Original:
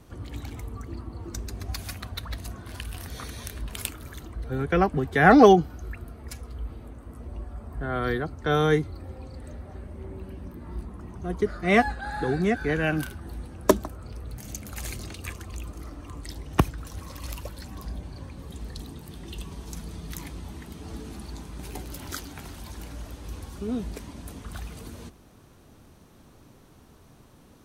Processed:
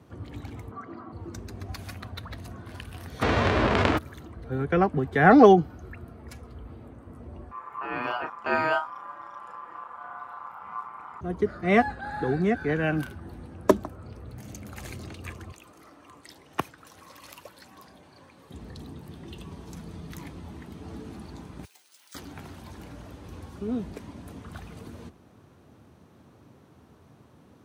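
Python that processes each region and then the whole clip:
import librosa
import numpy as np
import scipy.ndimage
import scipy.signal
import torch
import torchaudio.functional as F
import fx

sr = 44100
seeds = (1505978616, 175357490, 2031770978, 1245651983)

y = fx.chain(x, sr, fx.bandpass_edges(low_hz=180.0, high_hz=5000.0),
    fx.band_shelf(hz=1100.0, db=9.0, octaves=1.7),
    fx.notch_comb(f0_hz=890.0), at=(0.71, 1.12))
y = fx.envelope_flatten(y, sr, power=0.3, at=(3.21, 3.97), fade=0.02)
y = fx.spacing_loss(y, sr, db_at_10k=37, at=(3.21, 3.97), fade=0.02)
y = fx.env_flatten(y, sr, amount_pct=70, at=(3.21, 3.97), fade=0.02)
y = fx.chain(y, sr, fx.doubler(ms=34.0, db=-7),
    fx.ring_mod(carrier_hz=1100.0), at=(7.51, 11.21))
y = fx.chain(y, sr, fx.highpass(hz=860.0, slope=6),
    fx.high_shelf(hz=8300.0, db=3.5), at=(15.52, 18.51))
y = fx.chain(y, sr, fx.highpass(hz=870.0, slope=6),
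    fx.differentiator(),
    fx.resample_bad(factor=3, down='filtered', up='zero_stuff'), at=(21.65, 22.15))
y = scipy.signal.sosfilt(scipy.signal.butter(4, 76.0, 'highpass', fs=sr, output='sos'), y)
y = fx.high_shelf(y, sr, hz=3600.0, db=-11.0)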